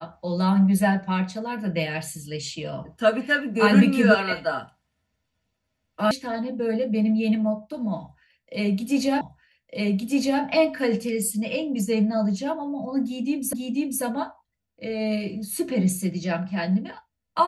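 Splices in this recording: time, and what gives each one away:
6.11 sound cut off
9.21 repeat of the last 1.21 s
13.53 repeat of the last 0.49 s

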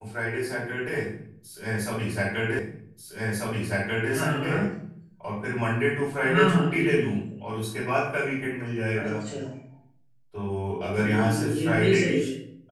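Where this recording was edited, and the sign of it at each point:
2.59 repeat of the last 1.54 s

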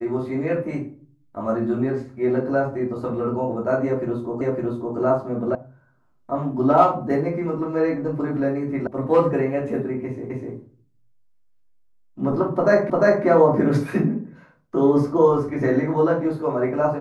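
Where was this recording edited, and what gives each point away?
4.41 repeat of the last 0.56 s
5.55 sound cut off
8.87 sound cut off
10.3 repeat of the last 0.25 s
12.9 repeat of the last 0.35 s

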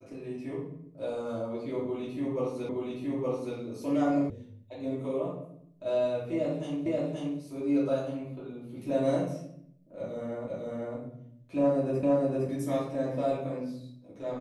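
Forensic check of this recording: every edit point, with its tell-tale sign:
2.69 repeat of the last 0.87 s
4.3 sound cut off
6.86 repeat of the last 0.53 s
10.48 repeat of the last 0.5 s
12.03 repeat of the last 0.46 s

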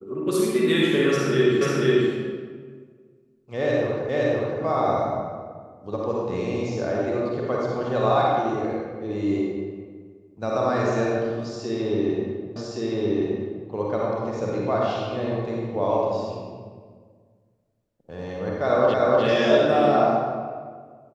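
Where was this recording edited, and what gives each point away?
1.61 repeat of the last 0.49 s
4.09 repeat of the last 0.52 s
12.56 repeat of the last 1.12 s
18.94 repeat of the last 0.3 s

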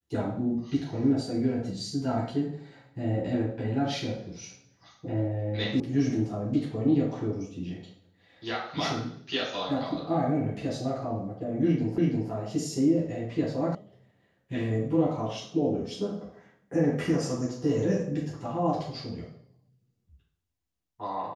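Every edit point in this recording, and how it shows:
5.8 sound cut off
11.98 repeat of the last 0.33 s
13.75 sound cut off

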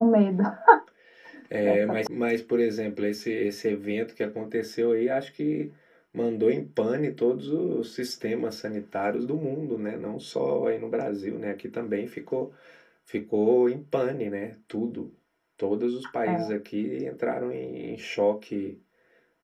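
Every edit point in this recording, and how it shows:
2.07 sound cut off

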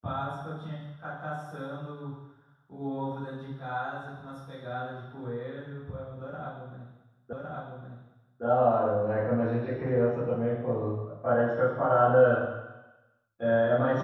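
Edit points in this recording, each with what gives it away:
7.33 repeat of the last 1.11 s

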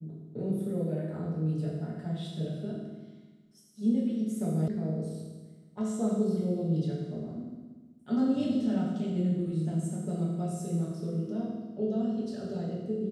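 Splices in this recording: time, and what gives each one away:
4.68 sound cut off

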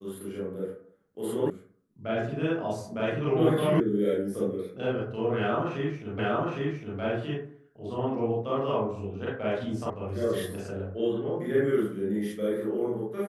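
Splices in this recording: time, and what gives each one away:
1.5 sound cut off
3.8 sound cut off
6.19 repeat of the last 0.81 s
9.9 sound cut off

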